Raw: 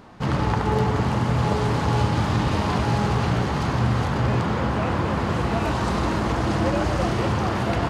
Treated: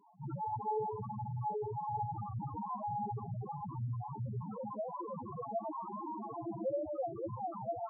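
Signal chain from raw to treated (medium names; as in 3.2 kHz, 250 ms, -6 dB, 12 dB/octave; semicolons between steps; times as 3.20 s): high-pass 100 Hz 12 dB/octave; bass shelf 370 Hz -11 dB; loudest bins only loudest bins 2; trim -2 dB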